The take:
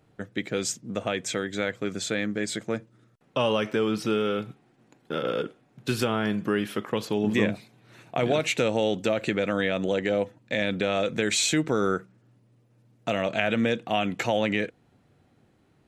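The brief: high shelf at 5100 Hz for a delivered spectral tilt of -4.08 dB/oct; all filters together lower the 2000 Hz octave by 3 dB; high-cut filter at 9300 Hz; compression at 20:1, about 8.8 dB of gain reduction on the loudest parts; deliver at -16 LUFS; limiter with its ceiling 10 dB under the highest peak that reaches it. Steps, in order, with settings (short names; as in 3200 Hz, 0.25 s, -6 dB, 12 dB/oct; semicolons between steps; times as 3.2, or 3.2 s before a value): LPF 9300 Hz; bell 2000 Hz -4.5 dB; high shelf 5100 Hz +3.5 dB; compressor 20:1, threshold -28 dBFS; gain +20 dB; limiter -3.5 dBFS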